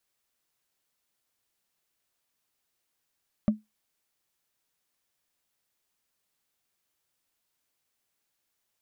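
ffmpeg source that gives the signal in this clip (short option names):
-f lavfi -i "aevalsrc='0.178*pow(10,-3*t/0.18)*sin(2*PI*214*t)+0.0562*pow(10,-3*t/0.053)*sin(2*PI*590*t)+0.0178*pow(10,-3*t/0.024)*sin(2*PI*1156.5*t)+0.00562*pow(10,-3*t/0.013)*sin(2*PI*1911.7*t)+0.00178*pow(10,-3*t/0.008)*sin(2*PI*2854.8*t)':d=0.45:s=44100"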